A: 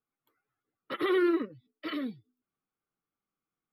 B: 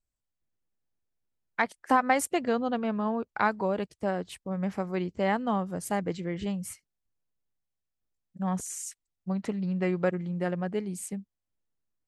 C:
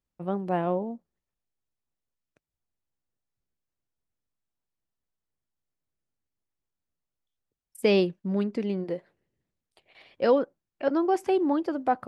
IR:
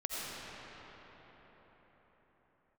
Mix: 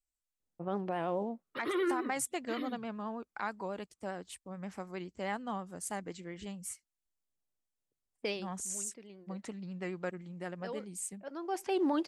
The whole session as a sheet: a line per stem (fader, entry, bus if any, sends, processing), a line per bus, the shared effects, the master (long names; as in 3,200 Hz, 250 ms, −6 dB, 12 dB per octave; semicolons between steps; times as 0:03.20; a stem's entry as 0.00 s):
−5.5 dB, 0.65 s, no send, no processing
−7.5 dB, 0.00 s, no send, octave-band graphic EQ 125/500/8,000 Hz −11/−4/+8 dB
+1.0 dB, 0.40 s, no send, low-pass that shuts in the quiet parts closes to 650 Hz, open at −21.5 dBFS; spectral tilt +2.5 dB per octave; automatic ducking −20 dB, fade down 0.25 s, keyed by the second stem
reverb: not used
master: pitch vibrato 9.5 Hz 45 cents; brickwall limiter −23.5 dBFS, peak gain reduction 12 dB